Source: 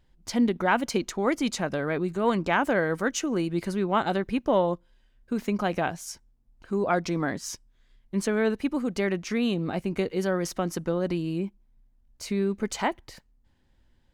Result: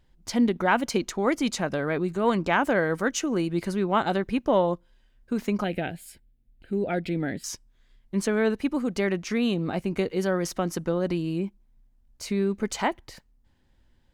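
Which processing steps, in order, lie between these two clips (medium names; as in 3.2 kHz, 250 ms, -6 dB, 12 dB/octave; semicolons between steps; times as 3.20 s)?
5.64–7.44 s: static phaser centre 2.6 kHz, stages 4; trim +1 dB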